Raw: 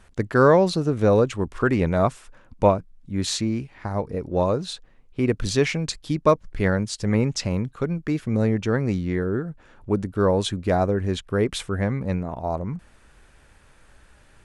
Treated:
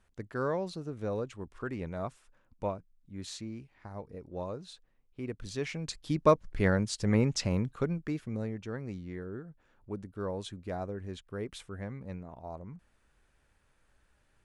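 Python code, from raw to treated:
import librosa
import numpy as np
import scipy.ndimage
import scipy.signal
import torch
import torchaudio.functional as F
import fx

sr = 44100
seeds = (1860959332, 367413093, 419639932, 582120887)

y = fx.gain(x, sr, db=fx.line((5.49, -16.5), (6.19, -5.0), (7.81, -5.0), (8.53, -16.0)))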